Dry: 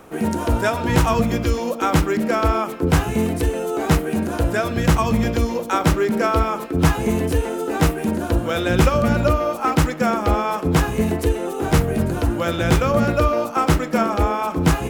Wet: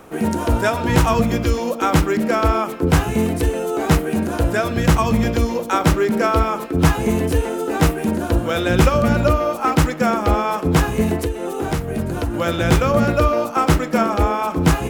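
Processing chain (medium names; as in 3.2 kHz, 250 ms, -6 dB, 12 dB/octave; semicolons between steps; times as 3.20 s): 11.21–12.34 s: compression 6:1, threshold -20 dBFS, peak gain reduction 9.5 dB; trim +1.5 dB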